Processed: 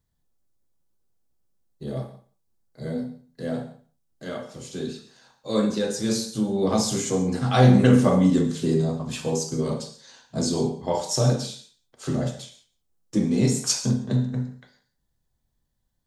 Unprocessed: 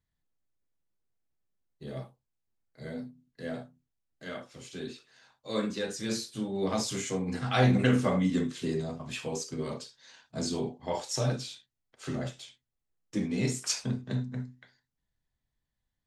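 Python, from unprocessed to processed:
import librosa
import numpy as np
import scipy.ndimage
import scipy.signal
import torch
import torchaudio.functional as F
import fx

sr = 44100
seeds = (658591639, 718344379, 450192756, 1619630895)

y = fx.peak_eq(x, sr, hz=2200.0, db=-9.5, octaves=1.4)
y = y + 10.0 ** (-23.0 / 20.0) * np.pad(y, (int(177 * sr / 1000.0), 0))[:len(y)]
y = fx.rev_gated(y, sr, seeds[0], gate_ms=160, shape='flat', drr_db=8.5)
y = y * 10.0 ** (8.5 / 20.0)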